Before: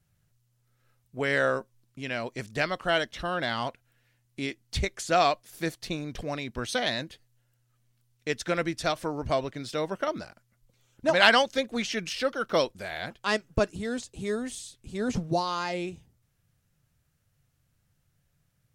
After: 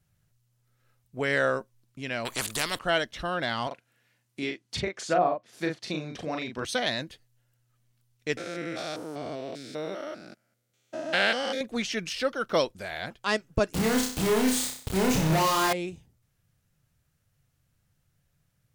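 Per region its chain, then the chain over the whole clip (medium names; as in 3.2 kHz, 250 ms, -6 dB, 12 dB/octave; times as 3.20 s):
2.25–2.79 s: peaking EQ 5.6 kHz -15 dB 0.44 oct + spectrum-flattening compressor 4:1
3.67–6.65 s: low-pass that closes with the level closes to 760 Hz, closed at -20 dBFS + high-pass 140 Hz + doubling 39 ms -4 dB
8.37–11.61 s: spectrogram pixelated in time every 200 ms + high-pass 190 Hz + peaking EQ 1 kHz -9.5 dB 0.37 oct
13.73–15.73 s: companded quantiser 2-bit + flutter echo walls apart 5.4 m, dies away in 0.49 s
whole clip: none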